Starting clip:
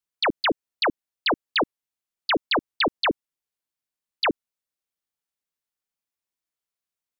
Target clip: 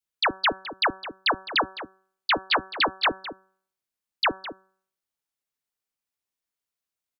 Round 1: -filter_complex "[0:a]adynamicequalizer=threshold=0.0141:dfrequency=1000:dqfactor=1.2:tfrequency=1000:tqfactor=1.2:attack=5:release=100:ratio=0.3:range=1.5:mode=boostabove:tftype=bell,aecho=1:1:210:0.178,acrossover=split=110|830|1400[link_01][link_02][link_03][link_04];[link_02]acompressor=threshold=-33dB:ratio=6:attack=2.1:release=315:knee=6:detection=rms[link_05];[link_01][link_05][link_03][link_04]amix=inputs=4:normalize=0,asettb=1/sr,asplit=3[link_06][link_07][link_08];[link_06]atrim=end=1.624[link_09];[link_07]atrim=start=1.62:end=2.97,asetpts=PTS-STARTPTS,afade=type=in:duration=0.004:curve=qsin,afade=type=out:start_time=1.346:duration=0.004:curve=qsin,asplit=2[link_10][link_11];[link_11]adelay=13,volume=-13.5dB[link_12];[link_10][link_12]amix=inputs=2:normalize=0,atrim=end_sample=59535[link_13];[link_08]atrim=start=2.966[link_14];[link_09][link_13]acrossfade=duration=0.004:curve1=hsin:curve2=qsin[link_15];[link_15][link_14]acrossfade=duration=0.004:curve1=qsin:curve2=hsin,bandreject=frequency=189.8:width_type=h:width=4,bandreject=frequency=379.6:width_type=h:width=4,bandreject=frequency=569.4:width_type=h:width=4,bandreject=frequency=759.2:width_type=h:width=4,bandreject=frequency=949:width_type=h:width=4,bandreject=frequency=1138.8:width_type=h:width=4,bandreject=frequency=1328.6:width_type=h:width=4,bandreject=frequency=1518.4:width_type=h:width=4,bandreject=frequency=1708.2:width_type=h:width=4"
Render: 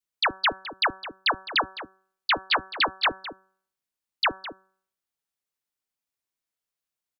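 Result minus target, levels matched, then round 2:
downward compressor: peak gain reduction +5.5 dB
-filter_complex "[0:a]adynamicequalizer=threshold=0.0141:dfrequency=1000:dqfactor=1.2:tfrequency=1000:tqfactor=1.2:attack=5:release=100:ratio=0.3:range=1.5:mode=boostabove:tftype=bell,aecho=1:1:210:0.178,acrossover=split=110|830|1400[link_01][link_02][link_03][link_04];[link_02]acompressor=threshold=-26.5dB:ratio=6:attack=2.1:release=315:knee=6:detection=rms[link_05];[link_01][link_05][link_03][link_04]amix=inputs=4:normalize=0,asettb=1/sr,asplit=3[link_06][link_07][link_08];[link_06]atrim=end=1.624[link_09];[link_07]atrim=start=1.62:end=2.97,asetpts=PTS-STARTPTS,afade=type=in:duration=0.004:curve=qsin,afade=type=out:start_time=1.346:duration=0.004:curve=qsin,asplit=2[link_10][link_11];[link_11]adelay=13,volume=-13.5dB[link_12];[link_10][link_12]amix=inputs=2:normalize=0,atrim=end_sample=59535[link_13];[link_08]atrim=start=2.966[link_14];[link_09][link_13]acrossfade=duration=0.004:curve1=hsin:curve2=qsin[link_15];[link_15][link_14]acrossfade=duration=0.004:curve1=qsin:curve2=hsin,bandreject=frequency=189.8:width_type=h:width=4,bandreject=frequency=379.6:width_type=h:width=4,bandreject=frequency=569.4:width_type=h:width=4,bandreject=frequency=759.2:width_type=h:width=4,bandreject=frequency=949:width_type=h:width=4,bandreject=frequency=1138.8:width_type=h:width=4,bandreject=frequency=1328.6:width_type=h:width=4,bandreject=frequency=1518.4:width_type=h:width=4,bandreject=frequency=1708.2:width_type=h:width=4"

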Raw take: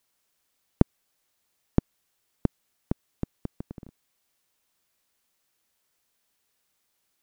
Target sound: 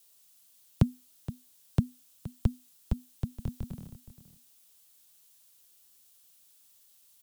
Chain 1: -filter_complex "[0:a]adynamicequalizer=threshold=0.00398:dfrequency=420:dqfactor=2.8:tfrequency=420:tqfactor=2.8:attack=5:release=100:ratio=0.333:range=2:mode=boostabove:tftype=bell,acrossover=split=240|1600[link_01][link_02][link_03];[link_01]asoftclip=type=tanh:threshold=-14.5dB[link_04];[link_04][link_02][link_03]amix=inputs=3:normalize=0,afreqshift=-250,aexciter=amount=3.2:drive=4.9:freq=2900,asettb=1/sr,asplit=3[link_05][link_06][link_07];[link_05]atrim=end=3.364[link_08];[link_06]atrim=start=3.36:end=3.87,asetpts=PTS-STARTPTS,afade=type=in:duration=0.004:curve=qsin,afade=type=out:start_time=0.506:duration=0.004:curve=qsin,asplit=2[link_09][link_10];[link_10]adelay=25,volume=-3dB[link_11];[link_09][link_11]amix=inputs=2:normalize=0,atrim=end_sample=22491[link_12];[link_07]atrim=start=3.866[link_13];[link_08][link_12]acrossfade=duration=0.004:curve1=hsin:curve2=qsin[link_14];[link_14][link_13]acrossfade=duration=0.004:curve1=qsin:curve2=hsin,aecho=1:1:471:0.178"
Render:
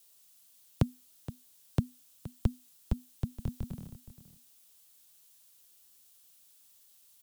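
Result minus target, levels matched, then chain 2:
soft clipping: distortion +15 dB
-filter_complex "[0:a]adynamicequalizer=threshold=0.00398:dfrequency=420:dqfactor=2.8:tfrequency=420:tqfactor=2.8:attack=5:release=100:ratio=0.333:range=2:mode=boostabove:tftype=bell,acrossover=split=240|1600[link_01][link_02][link_03];[link_01]asoftclip=type=tanh:threshold=-3.5dB[link_04];[link_04][link_02][link_03]amix=inputs=3:normalize=0,afreqshift=-250,aexciter=amount=3.2:drive=4.9:freq=2900,asettb=1/sr,asplit=3[link_05][link_06][link_07];[link_05]atrim=end=3.364[link_08];[link_06]atrim=start=3.36:end=3.87,asetpts=PTS-STARTPTS,afade=type=in:duration=0.004:curve=qsin,afade=type=out:start_time=0.506:duration=0.004:curve=qsin,asplit=2[link_09][link_10];[link_10]adelay=25,volume=-3dB[link_11];[link_09][link_11]amix=inputs=2:normalize=0,atrim=end_sample=22491[link_12];[link_07]atrim=start=3.866[link_13];[link_08][link_12]acrossfade=duration=0.004:curve1=hsin:curve2=qsin[link_14];[link_14][link_13]acrossfade=duration=0.004:curve1=qsin:curve2=hsin,aecho=1:1:471:0.178"

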